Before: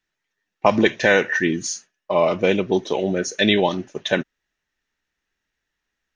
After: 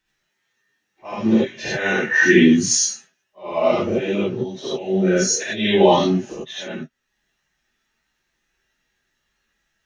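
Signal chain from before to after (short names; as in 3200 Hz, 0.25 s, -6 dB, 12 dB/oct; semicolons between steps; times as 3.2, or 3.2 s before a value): auto swell 0.38 s; plain phase-vocoder stretch 1.6×; non-linear reverb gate 0.11 s rising, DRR -7 dB; gain +3 dB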